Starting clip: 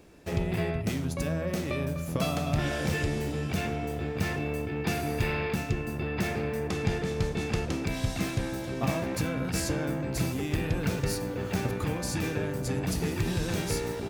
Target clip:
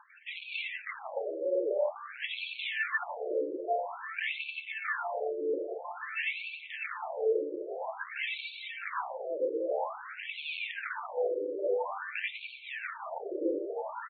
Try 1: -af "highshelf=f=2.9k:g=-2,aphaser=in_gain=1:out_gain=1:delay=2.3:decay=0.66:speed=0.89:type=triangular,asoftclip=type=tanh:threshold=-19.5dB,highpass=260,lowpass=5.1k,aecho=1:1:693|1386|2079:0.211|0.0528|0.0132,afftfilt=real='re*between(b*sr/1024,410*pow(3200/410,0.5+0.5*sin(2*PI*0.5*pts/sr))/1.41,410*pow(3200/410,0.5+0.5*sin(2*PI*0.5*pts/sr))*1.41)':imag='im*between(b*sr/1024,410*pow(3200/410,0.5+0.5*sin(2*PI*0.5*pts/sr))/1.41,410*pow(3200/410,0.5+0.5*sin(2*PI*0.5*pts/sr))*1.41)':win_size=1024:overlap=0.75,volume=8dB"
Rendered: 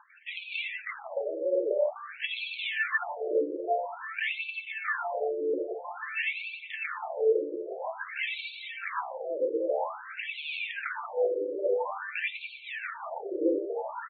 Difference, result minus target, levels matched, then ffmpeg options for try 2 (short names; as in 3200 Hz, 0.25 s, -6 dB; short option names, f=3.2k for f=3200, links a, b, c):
soft clip: distortion -6 dB
-af "highshelf=f=2.9k:g=-2,aphaser=in_gain=1:out_gain=1:delay=2.3:decay=0.66:speed=0.89:type=triangular,asoftclip=type=tanh:threshold=-28dB,highpass=260,lowpass=5.1k,aecho=1:1:693|1386|2079:0.211|0.0528|0.0132,afftfilt=real='re*between(b*sr/1024,410*pow(3200/410,0.5+0.5*sin(2*PI*0.5*pts/sr))/1.41,410*pow(3200/410,0.5+0.5*sin(2*PI*0.5*pts/sr))*1.41)':imag='im*between(b*sr/1024,410*pow(3200/410,0.5+0.5*sin(2*PI*0.5*pts/sr))/1.41,410*pow(3200/410,0.5+0.5*sin(2*PI*0.5*pts/sr))*1.41)':win_size=1024:overlap=0.75,volume=8dB"